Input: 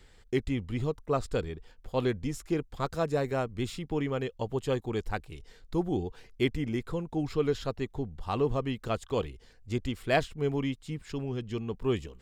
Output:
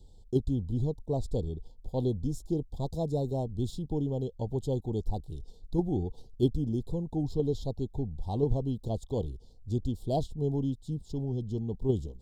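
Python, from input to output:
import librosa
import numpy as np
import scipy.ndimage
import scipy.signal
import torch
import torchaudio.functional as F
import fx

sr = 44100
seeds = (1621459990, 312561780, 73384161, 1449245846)

p1 = scipy.signal.sosfilt(scipy.signal.ellip(3, 1.0, 40, [860.0, 3600.0], 'bandstop', fs=sr, output='sos'), x)
p2 = fx.low_shelf(p1, sr, hz=300.0, db=10.0)
p3 = fx.level_steps(p2, sr, step_db=20)
p4 = p2 + (p3 * 10.0 ** (-3.0 / 20.0))
y = p4 * 10.0 ** (-6.0 / 20.0)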